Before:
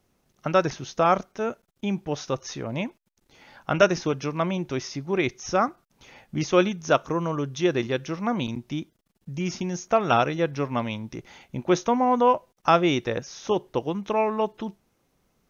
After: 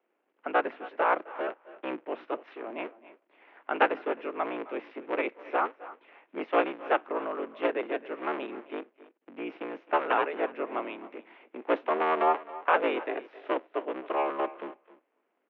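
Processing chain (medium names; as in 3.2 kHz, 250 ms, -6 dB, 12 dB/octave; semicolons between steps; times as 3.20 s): cycle switcher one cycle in 3, inverted; speakerphone echo 260 ms, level -20 dB; mistuned SSB +52 Hz 240–2700 Hz; on a send: delay 281 ms -19 dB; on the sum: trim -5 dB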